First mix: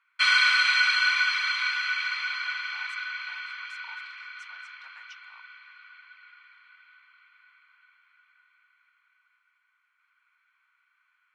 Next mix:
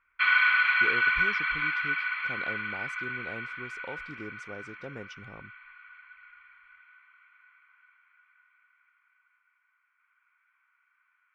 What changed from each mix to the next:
speech: remove elliptic high-pass 960 Hz, stop band 60 dB; background: add LPF 2500 Hz 24 dB/oct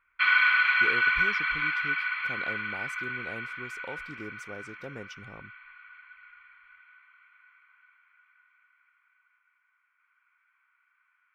master: remove air absorption 62 m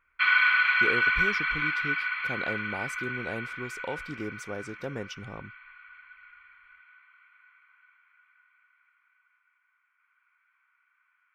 speech +6.0 dB

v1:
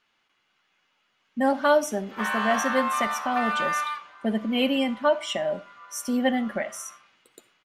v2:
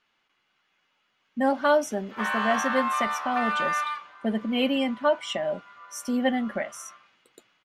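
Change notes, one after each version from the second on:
speech: send off; master: add high shelf 8600 Hz -7 dB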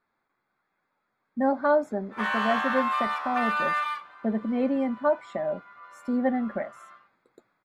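speech: add running mean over 15 samples; master: add high shelf 8600 Hz +7 dB

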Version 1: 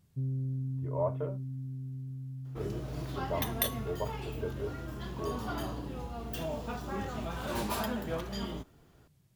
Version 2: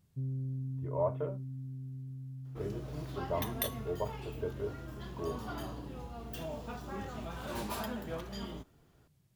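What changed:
first sound -3.0 dB; second sound -4.5 dB

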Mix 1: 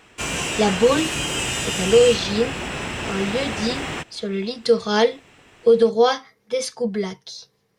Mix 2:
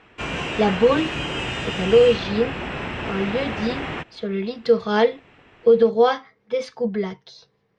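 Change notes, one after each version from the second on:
master: add LPF 2800 Hz 12 dB/oct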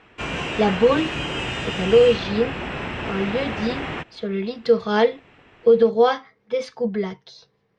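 none

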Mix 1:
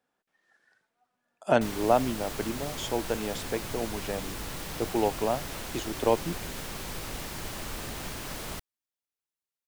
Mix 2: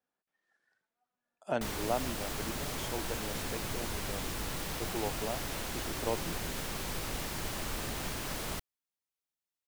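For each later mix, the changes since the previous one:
speech -10.0 dB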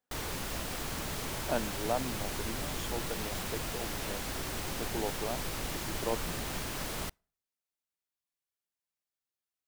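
background: entry -1.50 s; reverb: on, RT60 0.50 s

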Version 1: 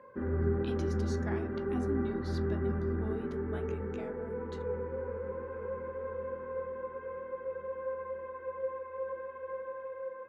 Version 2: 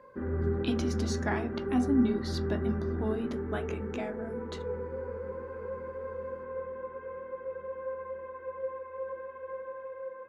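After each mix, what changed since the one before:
speech +10.0 dB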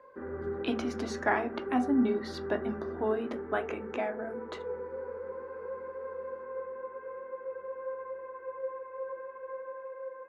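speech +6.5 dB; master: add three-band isolator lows -15 dB, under 320 Hz, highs -13 dB, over 2500 Hz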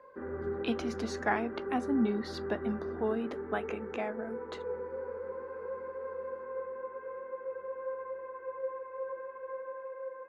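reverb: off

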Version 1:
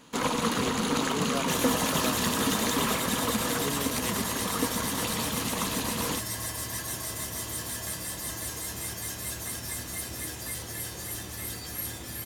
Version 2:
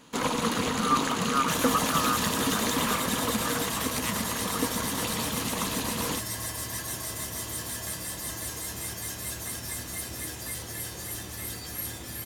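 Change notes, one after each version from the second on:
speech: add resonant high-pass 1200 Hz, resonance Q 14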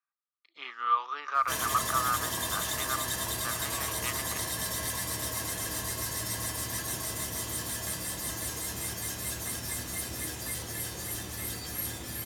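first sound: muted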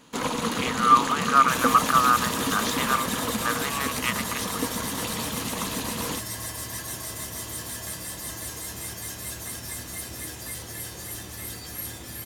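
speech +9.5 dB; first sound: unmuted

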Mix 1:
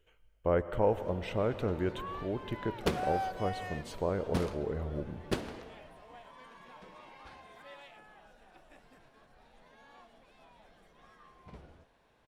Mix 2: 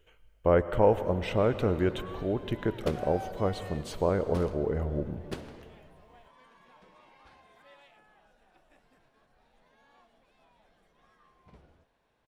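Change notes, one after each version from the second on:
speech +5.5 dB; background -5.5 dB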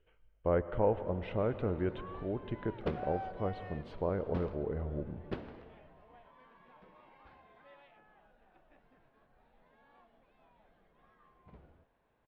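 speech -6.0 dB; master: add air absorption 360 m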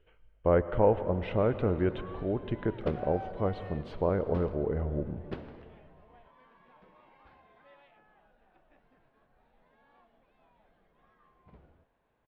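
speech +5.5 dB

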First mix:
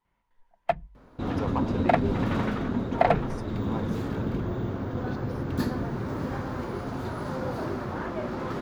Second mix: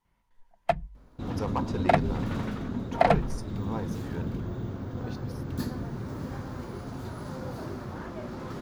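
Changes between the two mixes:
second sound -7.5 dB; master: add tone controls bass +5 dB, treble +8 dB

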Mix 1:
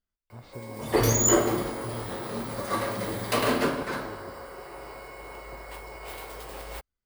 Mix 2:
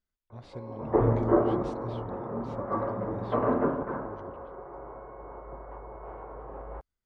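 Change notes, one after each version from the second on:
background: add LPF 1200 Hz 24 dB/oct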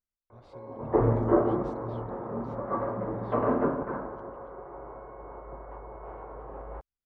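speech -9.0 dB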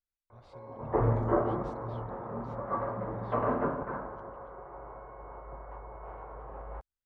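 master: add bell 320 Hz -7 dB 1.5 oct

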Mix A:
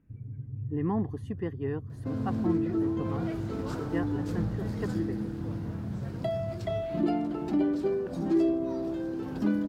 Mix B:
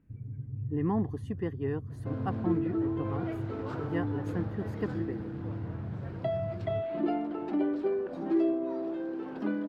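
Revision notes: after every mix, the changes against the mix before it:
second sound: add three-band isolator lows -21 dB, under 240 Hz, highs -19 dB, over 3400 Hz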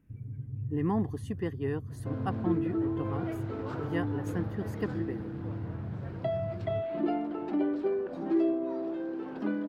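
speech: add high shelf 3400 Hz +11 dB

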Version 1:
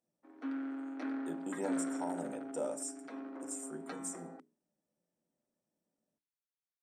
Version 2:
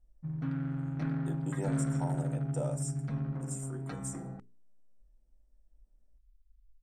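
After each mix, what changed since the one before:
background: remove steep high-pass 250 Hz 96 dB/oct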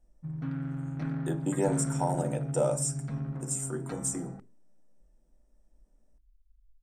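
speech +10.0 dB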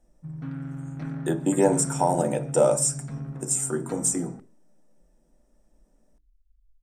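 speech +8.0 dB

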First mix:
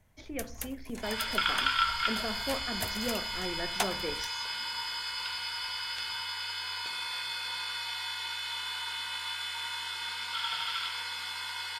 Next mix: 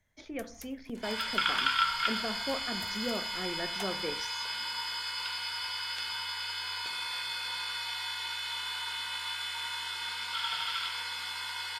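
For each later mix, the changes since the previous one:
first sound -11.5 dB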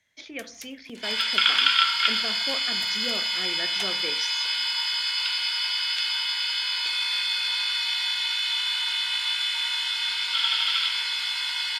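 master: add weighting filter D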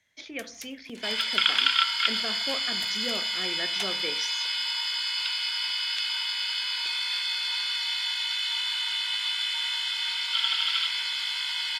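second sound: send -9.0 dB

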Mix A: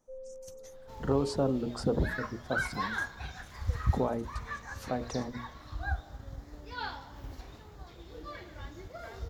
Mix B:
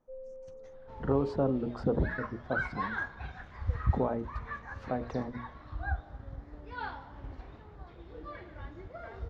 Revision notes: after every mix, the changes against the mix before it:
master: add LPF 2200 Hz 12 dB/oct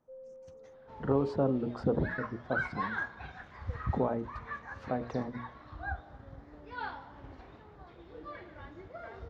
first sound: add tilt +4 dB/oct; second sound: add HPF 140 Hz 6 dB/oct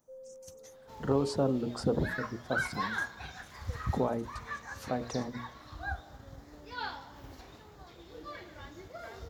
master: remove LPF 2200 Hz 12 dB/oct

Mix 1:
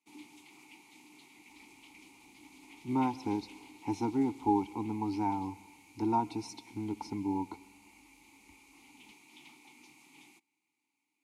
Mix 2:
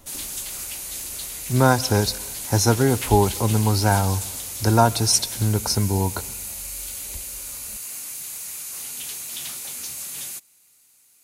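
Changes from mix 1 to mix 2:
speech: entry -1.35 s; master: remove vowel filter u

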